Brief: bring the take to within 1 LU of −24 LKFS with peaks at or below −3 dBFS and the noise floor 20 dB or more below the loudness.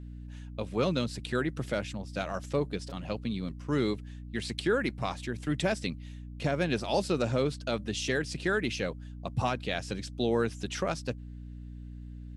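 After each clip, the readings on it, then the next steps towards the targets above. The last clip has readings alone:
mains hum 60 Hz; hum harmonics up to 300 Hz; level of the hum −40 dBFS; integrated loudness −32.0 LKFS; sample peak −16.0 dBFS; target loudness −24.0 LKFS
→ mains-hum notches 60/120/180/240/300 Hz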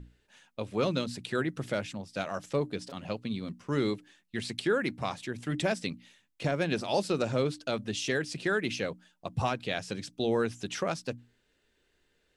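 mains hum none found; integrated loudness −32.5 LKFS; sample peak −16.0 dBFS; target loudness −24.0 LKFS
→ level +8.5 dB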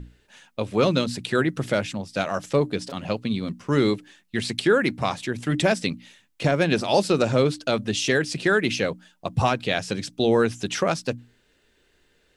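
integrated loudness −24.0 LKFS; sample peak −7.5 dBFS; background noise floor −64 dBFS

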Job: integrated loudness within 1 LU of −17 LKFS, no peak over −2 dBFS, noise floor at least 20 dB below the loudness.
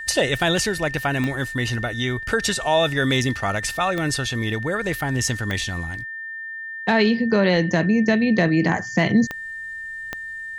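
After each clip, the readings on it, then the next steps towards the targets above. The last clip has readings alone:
number of clicks 5; interfering tone 1,800 Hz; level of the tone −30 dBFS; integrated loudness −22.0 LKFS; sample peak −5.5 dBFS; target loudness −17.0 LKFS
→ click removal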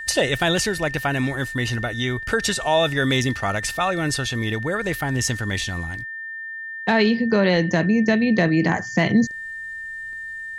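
number of clicks 2; interfering tone 1,800 Hz; level of the tone −30 dBFS
→ notch filter 1,800 Hz, Q 30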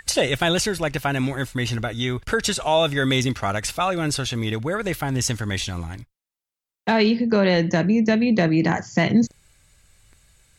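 interfering tone none found; integrated loudness −22.0 LKFS; sample peak −6.0 dBFS; target loudness −17.0 LKFS
→ level +5 dB
brickwall limiter −2 dBFS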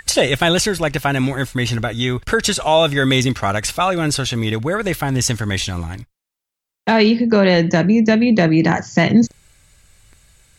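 integrated loudness −17.0 LKFS; sample peak −2.0 dBFS; background noise floor −84 dBFS

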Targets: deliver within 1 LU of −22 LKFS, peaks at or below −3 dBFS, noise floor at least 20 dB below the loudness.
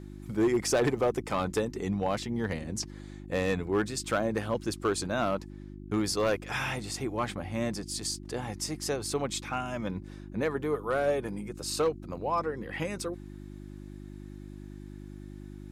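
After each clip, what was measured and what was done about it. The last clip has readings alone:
share of clipped samples 0.6%; peaks flattened at −20.0 dBFS; mains hum 50 Hz; hum harmonics up to 350 Hz; level of the hum −41 dBFS; integrated loudness −31.5 LKFS; sample peak −20.0 dBFS; target loudness −22.0 LKFS
→ clipped peaks rebuilt −20 dBFS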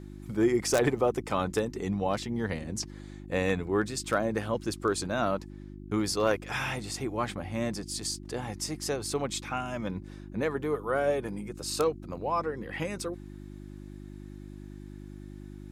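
share of clipped samples 0.0%; mains hum 50 Hz; hum harmonics up to 350 Hz; level of the hum −41 dBFS
→ hum removal 50 Hz, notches 7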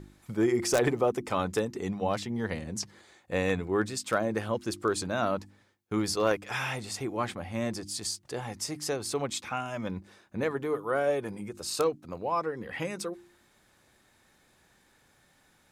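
mains hum none found; integrated loudness −31.0 LKFS; sample peak −10.5 dBFS; target loudness −22.0 LKFS
→ level +9 dB
brickwall limiter −3 dBFS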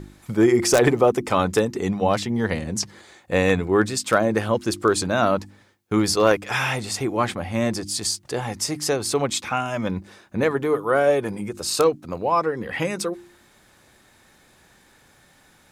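integrated loudness −22.0 LKFS; sample peak −3.0 dBFS; background noise floor −56 dBFS

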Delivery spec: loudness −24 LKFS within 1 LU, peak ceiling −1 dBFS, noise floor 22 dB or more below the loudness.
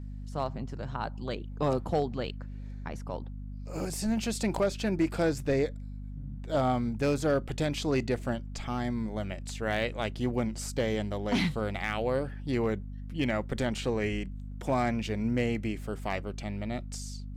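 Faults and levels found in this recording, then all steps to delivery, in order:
share of clipped samples 0.4%; peaks flattened at −19.5 dBFS; mains hum 50 Hz; hum harmonics up to 250 Hz; level of the hum −37 dBFS; integrated loudness −31.5 LKFS; sample peak −19.5 dBFS; target loudness −24.0 LKFS
→ clipped peaks rebuilt −19.5 dBFS
hum removal 50 Hz, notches 5
level +7.5 dB

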